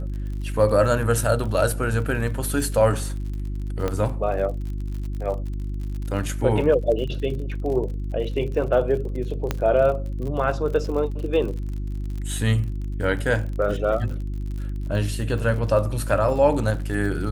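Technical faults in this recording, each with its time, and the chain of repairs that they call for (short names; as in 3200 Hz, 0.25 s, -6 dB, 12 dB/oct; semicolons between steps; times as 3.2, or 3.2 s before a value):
crackle 55/s -32 dBFS
hum 50 Hz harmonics 7 -28 dBFS
3.88 pop -12 dBFS
9.51 pop -9 dBFS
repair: de-click; de-hum 50 Hz, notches 7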